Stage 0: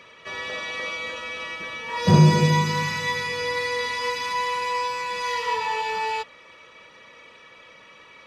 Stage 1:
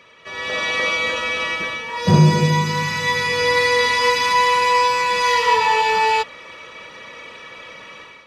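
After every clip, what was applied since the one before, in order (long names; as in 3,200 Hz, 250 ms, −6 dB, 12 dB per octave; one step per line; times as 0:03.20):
automatic gain control gain up to 11.5 dB
level −1 dB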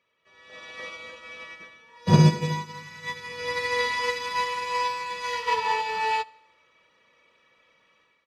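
repeating echo 76 ms, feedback 58%, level −12.5 dB
expander for the loud parts 2.5 to 1, over −25 dBFS
level −2 dB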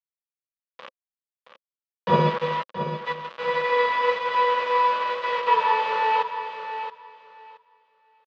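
bit reduction 5 bits
loudspeaker in its box 280–3,200 Hz, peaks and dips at 310 Hz −9 dB, 530 Hz +9 dB, 740 Hz −3 dB, 1,100 Hz +9 dB, 2,200 Hz −4 dB
repeating echo 673 ms, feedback 18%, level −9.5 dB
level +2 dB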